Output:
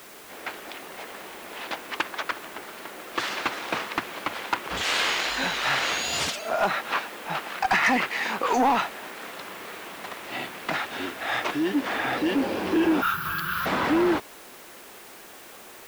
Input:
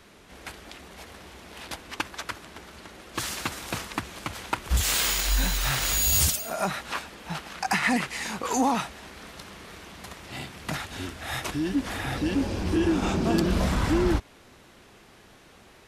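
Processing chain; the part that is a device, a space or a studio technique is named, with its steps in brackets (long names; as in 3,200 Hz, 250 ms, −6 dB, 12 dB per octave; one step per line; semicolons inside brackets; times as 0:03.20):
tape answering machine (band-pass filter 340–3,100 Hz; soft clipping −22.5 dBFS, distortion −15 dB; tape wow and flutter; white noise bed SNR 21 dB)
0:13.02–0:13.66: drawn EQ curve 150 Hz 0 dB, 250 Hz −29 dB, 400 Hz −23 dB, 660 Hz −29 dB, 1,400 Hz +10 dB, 2,100 Hz −8 dB, 3,000 Hz −2 dB, 8,600 Hz −4 dB, 12,000 Hz +13 dB
level +7.5 dB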